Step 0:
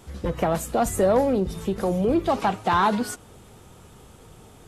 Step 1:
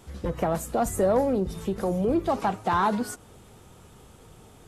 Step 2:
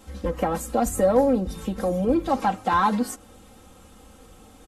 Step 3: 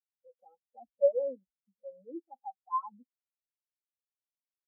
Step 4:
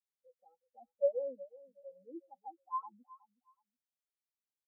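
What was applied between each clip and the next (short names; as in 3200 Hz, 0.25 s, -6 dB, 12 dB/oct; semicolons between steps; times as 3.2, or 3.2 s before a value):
dynamic EQ 3100 Hz, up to -5 dB, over -43 dBFS, Q 0.96; gain -2.5 dB
comb 3.8 ms, depth 84%
overdrive pedal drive 12 dB, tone 2000 Hz, clips at -9 dBFS; spectral expander 4:1; gain -5.5 dB
feedback echo 0.369 s, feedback 22%, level -19 dB; gain -5.5 dB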